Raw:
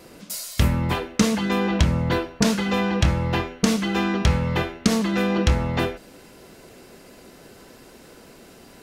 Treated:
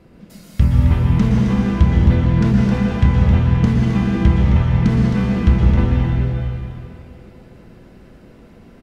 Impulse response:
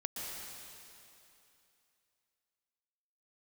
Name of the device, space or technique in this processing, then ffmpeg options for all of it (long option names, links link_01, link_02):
cave: -filter_complex "[0:a]aecho=1:1:265:0.398[link_01];[1:a]atrim=start_sample=2205[link_02];[link_01][link_02]afir=irnorm=-1:irlink=0,bass=frequency=250:gain=13,treble=frequency=4000:gain=-14,volume=-4dB"